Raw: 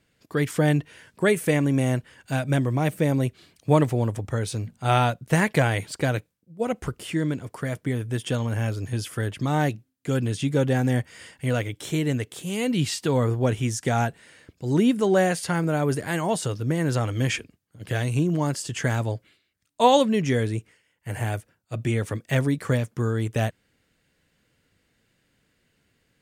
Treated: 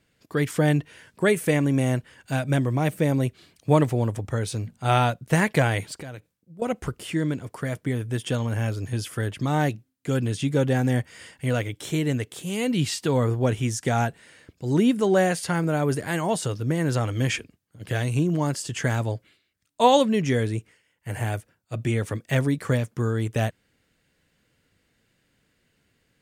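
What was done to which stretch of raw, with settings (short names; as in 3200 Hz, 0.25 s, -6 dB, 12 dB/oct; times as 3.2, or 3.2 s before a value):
5.93–6.62 compressor, threshold -35 dBFS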